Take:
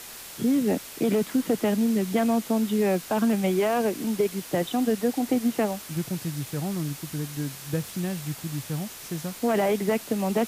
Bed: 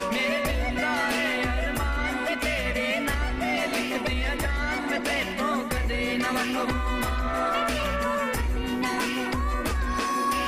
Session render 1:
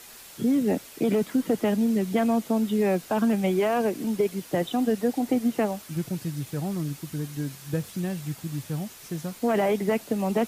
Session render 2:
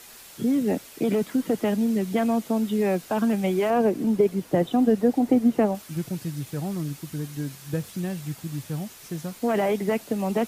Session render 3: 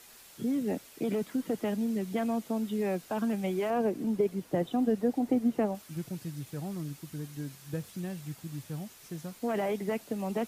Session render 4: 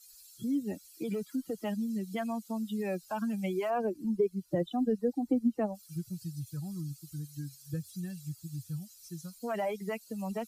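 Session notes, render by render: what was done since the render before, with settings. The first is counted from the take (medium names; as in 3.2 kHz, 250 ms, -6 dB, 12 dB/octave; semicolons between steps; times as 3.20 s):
noise reduction 6 dB, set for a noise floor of -42 dBFS
3.70–5.75 s: tilt shelf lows +5 dB, about 1.3 kHz
trim -7.5 dB
expander on every frequency bin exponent 2; in parallel at +1 dB: compression, threshold -43 dBFS, peak gain reduction 17.5 dB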